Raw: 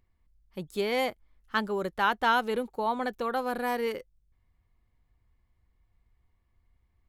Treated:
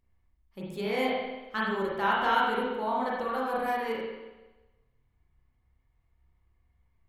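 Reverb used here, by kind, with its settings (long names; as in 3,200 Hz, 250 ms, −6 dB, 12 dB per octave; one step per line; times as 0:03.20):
spring reverb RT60 1.1 s, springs 31/46 ms, chirp 45 ms, DRR −6 dB
level −6.5 dB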